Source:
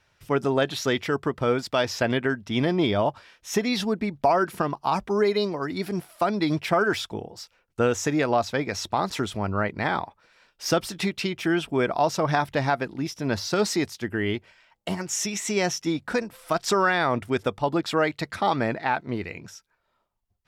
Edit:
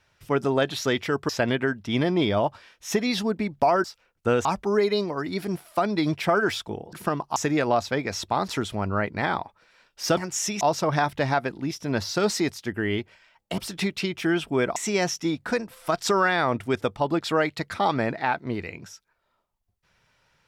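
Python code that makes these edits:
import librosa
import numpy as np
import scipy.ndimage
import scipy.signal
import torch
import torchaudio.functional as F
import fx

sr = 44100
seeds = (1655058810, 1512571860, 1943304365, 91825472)

y = fx.edit(x, sr, fx.cut(start_s=1.29, length_s=0.62),
    fx.swap(start_s=4.46, length_s=0.43, other_s=7.37, other_length_s=0.61),
    fx.swap(start_s=10.79, length_s=1.18, other_s=14.94, other_length_s=0.44), tone=tone)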